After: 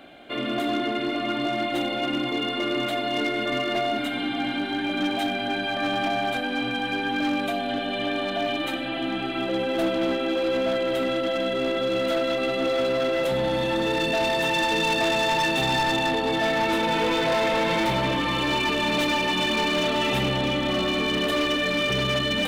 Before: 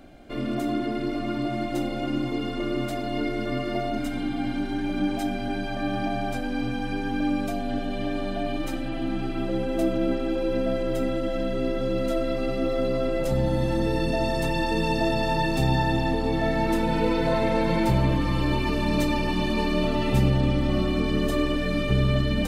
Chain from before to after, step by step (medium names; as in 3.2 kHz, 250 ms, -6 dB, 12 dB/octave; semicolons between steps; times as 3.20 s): high-pass 610 Hz 6 dB/octave; resonant high shelf 4.3 kHz -6.5 dB, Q 3; hard clipper -26.5 dBFS, distortion -13 dB; trim +7 dB